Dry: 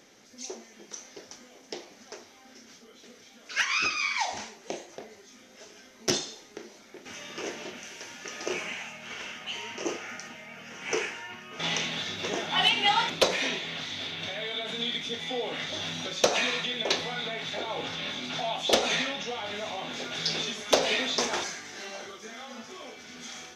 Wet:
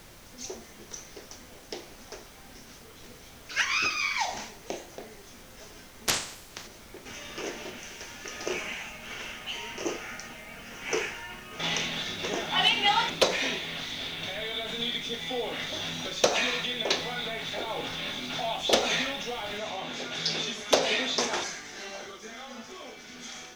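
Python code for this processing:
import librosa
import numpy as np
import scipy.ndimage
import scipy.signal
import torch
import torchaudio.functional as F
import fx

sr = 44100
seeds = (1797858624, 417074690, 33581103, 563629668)

y = fx.spec_clip(x, sr, under_db=29, at=(6.07, 6.66), fade=0.02)
y = fx.noise_floor_step(y, sr, seeds[0], at_s=19.58, before_db=-51, after_db=-63, tilt_db=3.0)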